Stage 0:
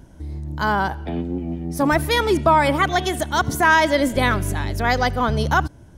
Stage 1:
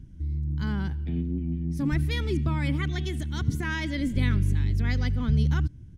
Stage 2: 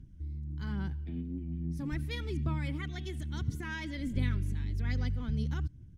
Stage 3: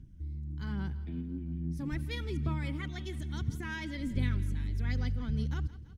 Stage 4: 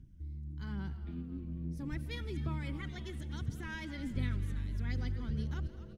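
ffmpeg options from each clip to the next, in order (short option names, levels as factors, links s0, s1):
-af "firequalizer=gain_entry='entry(130,0);entry(650,-29);entry(2100,-12);entry(13000,-22)':delay=0.05:min_phase=1,volume=1.19"
-af "aphaser=in_gain=1:out_gain=1:delay=4.4:decay=0.31:speed=1.2:type=sinusoidal,volume=0.355"
-af "aecho=1:1:167|334|501|668|835:0.126|0.073|0.0424|0.0246|0.0142"
-filter_complex "[0:a]asplit=6[s0][s1][s2][s3][s4][s5];[s1]adelay=252,afreqshift=-140,volume=0.2[s6];[s2]adelay=504,afreqshift=-280,volume=0.107[s7];[s3]adelay=756,afreqshift=-420,volume=0.0582[s8];[s4]adelay=1008,afreqshift=-560,volume=0.0313[s9];[s5]adelay=1260,afreqshift=-700,volume=0.017[s10];[s0][s6][s7][s8][s9][s10]amix=inputs=6:normalize=0,volume=0.631"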